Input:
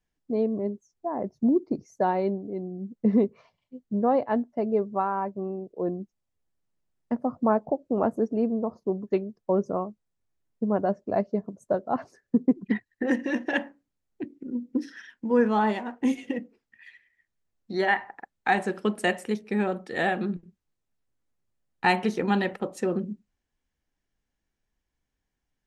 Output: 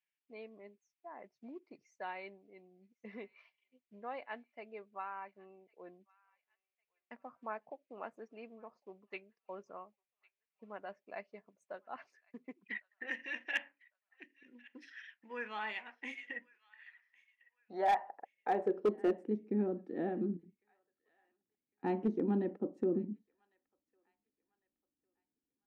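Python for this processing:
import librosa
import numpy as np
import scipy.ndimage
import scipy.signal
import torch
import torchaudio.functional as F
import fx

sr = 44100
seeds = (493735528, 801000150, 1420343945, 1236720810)

y = fx.filter_sweep_bandpass(x, sr, from_hz=2400.0, to_hz=290.0, start_s=15.9, end_s=19.38, q=3.3)
y = fx.echo_wet_highpass(y, sr, ms=1103, feedback_pct=32, hz=1500.0, wet_db=-23.0)
y = np.clip(10.0 ** (25.0 / 20.0) * y, -1.0, 1.0) / 10.0 ** (25.0 / 20.0)
y = y * 10.0 ** (1.0 / 20.0)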